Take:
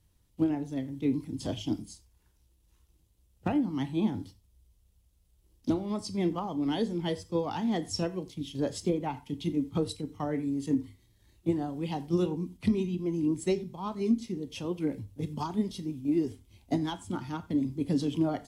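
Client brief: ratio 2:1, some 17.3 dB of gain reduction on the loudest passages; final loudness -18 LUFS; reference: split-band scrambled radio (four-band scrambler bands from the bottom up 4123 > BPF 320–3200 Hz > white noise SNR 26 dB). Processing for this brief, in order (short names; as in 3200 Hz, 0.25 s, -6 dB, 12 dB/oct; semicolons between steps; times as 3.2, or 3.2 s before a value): compressor 2:1, threshold -55 dBFS; four-band scrambler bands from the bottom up 4123; BPF 320–3200 Hz; white noise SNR 26 dB; gain +26.5 dB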